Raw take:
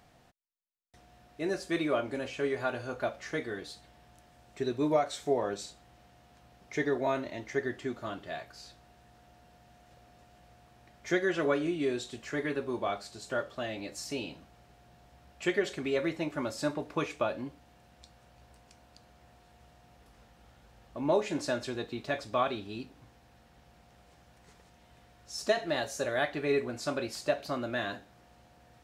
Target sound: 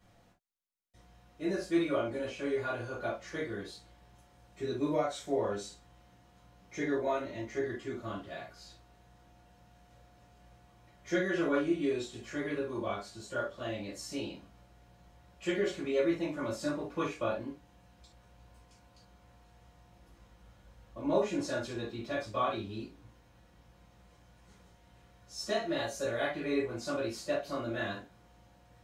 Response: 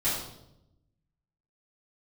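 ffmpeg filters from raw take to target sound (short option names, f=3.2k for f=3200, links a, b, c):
-filter_complex "[1:a]atrim=start_sample=2205,atrim=end_sample=6174,asetrate=74970,aresample=44100[a];[0:a][a]afir=irnorm=-1:irlink=0,volume=-7.5dB"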